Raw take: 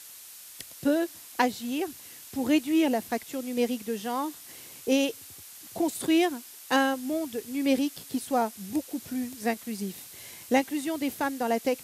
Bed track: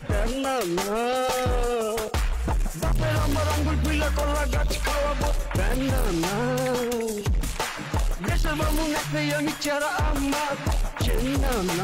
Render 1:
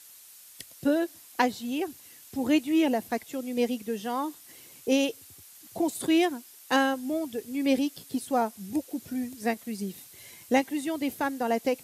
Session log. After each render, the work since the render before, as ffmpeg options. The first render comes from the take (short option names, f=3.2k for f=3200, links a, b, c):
-af "afftdn=nr=6:nf=-47"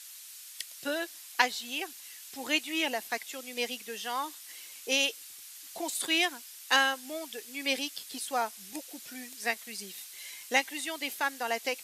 -af "highpass=f=1.5k:p=1,equalizer=f=3k:w=0.32:g=7"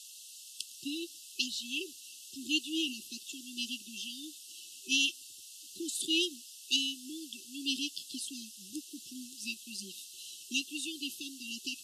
-af "afftfilt=real='re*(1-between(b*sr/4096,390,2600))':imag='im*(1-between(b*sr/4096,390,2600))':win_size=4096:overlap=0.75,lowpass=9.4k"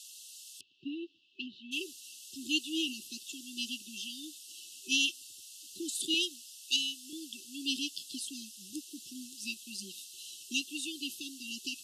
-filter_complex "[0:a]asplit=3[a][b][c];[a]afade=t=out:st=0.59:d=0.02[d];[b]lowpass=f=2.4k:w=0.5412,lowpass=f=2.4k:w=1.3066,afade=t=in:st=0.59:d=0.02,afade=t=out:st=1.71:d=0.02[e];[c]afade=t=in:st=1.71:d=0.02[f];[d][e][f]amix=inputs=3:normalize=0,asettb=1/sr,asplit=3[g][h][i];[g]atrim=end=6.144[j];[h]atrim=start=6.14:end=7.13,asetpts=PTS-STARTPTS,afade=t=in:d=0.004:c=qsin,afade=t=out:st=0.986:d=0.004:c=qsin,highpass=f=580:p=1[k];[i]atrim=start=7.126[l];[j][k]acrossfade=d=0.004:c1=hsin:c2=qsin[m];[m][l]acrossfade=d=0.004:c1=qsin:c2=hsin"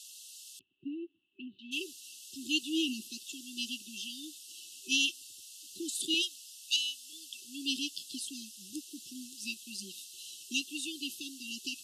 -filter_complex "[0:a]asettb=1/sr,asplit=3[a][b][c];[a]atrim=end=0.594[d];[b]atrim=start=0.59:end=1.59,asetpts=PTS-STARTPTS,afade=t=in:d=0.004:c=qsin,afade=t=out:st=0.996:d=0.004:c=qsin,lowpass=f=2.1k:w=0.5412,lowpass=f=2.1k:w=1.3066[e];[c]atrim=start=1.586[f];[d][e]acrossfade=d=0.004:c1=hsin:c2=qsin[g];[g][f]acrossfade=d=0.004:c1=qsin:c2=hsin,asettb=1/sr,asplit=3[h][i][j];[h]atrim=end=2.624[k];[i]atrim=start=2.62:end=3.09,asetpts=PTS-STARTPTS,afade=t=in:d=0.004:c=qsin,afade=t=out:st=0.466:d=0.004:c=qsin,lowshelf=f=140:t=q:w=3:g=-14[l];[j]atrim=start=3.086[m];[k][l]acrossfade=d=0.004:c1=hsin:c2=qsin[n];[n][m]acrossfade=d=0.004:c1=qsin:c2=hsin,asplit=3[o][p][q];[o]afade=t=out:st=6.21:d=0.02[r];[p]highpass=890,afade=t=in:st=6.21:d=0.02,afade=t=out:st=7.41:d=0.02[s];[q]afade=t=in:st=7.41:d=0.02[t];[r][s][t]amix=inputs=3:normalize=0"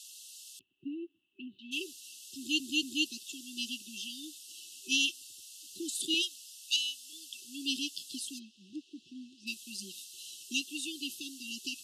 -filter_complex "[0:a]asplit=3[a][b][c];[a]afade=t=out:st=8.38:d=0.02[d];[b]highpass=110,lowpass=2.4k,afade=t=in:st=8.38:d=0.02,afade=t=out:st=9.46:d=0.02[e];[c]afade=t=in:st=9.46:d=0.02[f];[d][e][f]amix=inputs=3:normalize=0,asplit=4[g][h][i][j];[g]atrim=end=2.602[k];[h]atrim=start=2.368:end=2.602[l];[i]atrim=start=2.368:end=2.602[m];[j]atrim=start=3.058[n];[k][l]acrossfade=d=0.004:c1=hsin:c2=hsin[o];[o][m]acrossfade=d=0.004:c1=hsin:c2=hsin[p];[p][n]acrossfade=d=0.004:c1=hsin:c2=hsin"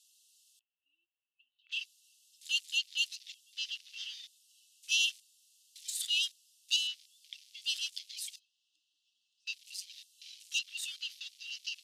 -af "highpass=f=1.1k:w=0.5412,highpass=f=1.1k:w=1.3066,afwtdn=0.00398"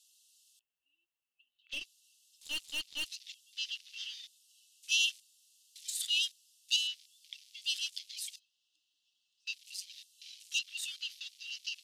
-filter_complex "[0:a]asettb=1/sr,asplit=3[a][b][c];[a]atrim=end=1.734[d];[b]atrim=start=1.73:end=3.06,asetpts=PTS-STARTPTS,afade=t=in:d=0.004:c=qsin,afade=t=out:st=1.326:d=0.004:c=qsin,aeval=exprs='(tanh(39.8*val(0)+0.4)-tanh(0.4))/39.8':c=same[e];[c]atrim=start=3.056[f];[d][e]acrossfade=d=0.004:c1=hsin:c2=qsin[g];[g][f]acrossfade=d=0.004:c1=qsin:c2=hsin,asettb=1/sr,asplit=3[h][i][j];[h]atrim=end=6.164[k];[i]atrim=start=6.16:end=7.82,asetpts=PTS-STARTPTS,afade=t=in:d=0.004:c=qsin,afade=t=out:st=1.656:d=0.004:c=qsin,highpass=f=1.3k:w=0.5412,highpass=f=1.3k:w=1.3066[l];[j]atrim=start=7.816[m];[k][l]acrossfade=d=0.004:c1=hsin:c2=qsin[n];[n][m]acrossfade=d=0.004:c1=qsin:c2=hsin"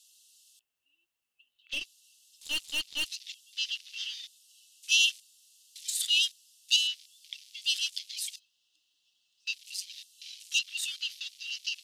-af "volume=5.5dB"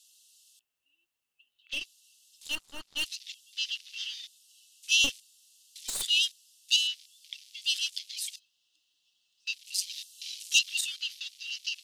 -filter_complex "[0:a]asettb=1/sr,asplit=3[a][b][c];[a]atrim=end=2.554[d];[b]atrim=start=2.55:end=2.96,asetpts=PTS-STARTPTS,afade=t=in:d=0.004:c=qsin,afade=t=out:st=0.406:d=0.004:c=qsin,highshelf=f=1.9k:t=q:w=1.5:g=-12[e];[c]atrim=start=2.956[f];[d][e]acrossfade=d=0.004:c1=hsin:c2=qsin[g];[g][f]acrossfade=d=0.004:c1=qsin:c2=hsin,asettb=1/sr,asplit=3[h][i][j];[h]atrim=end=5.044[k];[i]atrim=start=5.04:end=6.03,asetpts=PTS-STARTPTS,afade=t=in:d=0.004:c=qsin,afade=t=out:st=0.986:d=0.004:c=qsin,aeval=exprs='clip(val(0),-1,0.0224)':c=same[l];[j]atrim=start=6.026[m];[k][l]acrossfade=d=0.004:c1=hsin:c2=qsin[n];[n][m]acrossfade=d=0.004:c1=qsin:c2=hsin,asettb=1/sr,asplit=3[o][p][q];[o]atrim=end=9.744[r];[p]atrim=start=9.74:end=10.81,asetpts=PTS-STARTPTS,afade=t=in:d=0.004:c=qsin,afade=t=out:st=1.066:d=0.004:c=qsin,highshelf=f=2.7k:g=8[s];[q]atrim=start=10.806[t];[r][s]acrossfade=d=0.004:c1=hsin:c2=qsin[u];[u][t]acrossfade=d=0.004:c1=qsin:c2=hsin"